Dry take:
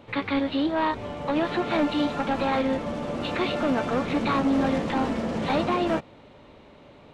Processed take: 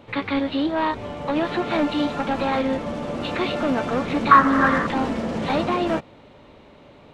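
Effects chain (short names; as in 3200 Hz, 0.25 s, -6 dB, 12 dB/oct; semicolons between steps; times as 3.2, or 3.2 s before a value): 4.31–4.87 band shelf 1400 Hz +15 dB 1.1 oct; gain +2 dB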